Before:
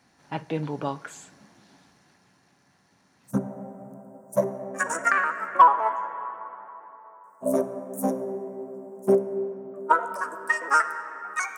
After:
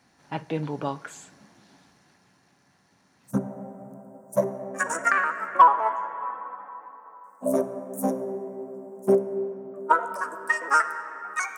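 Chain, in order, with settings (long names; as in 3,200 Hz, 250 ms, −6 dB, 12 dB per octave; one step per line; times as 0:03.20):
0:06.22–0:07.46: comb filter 3.9 ms, depth 82%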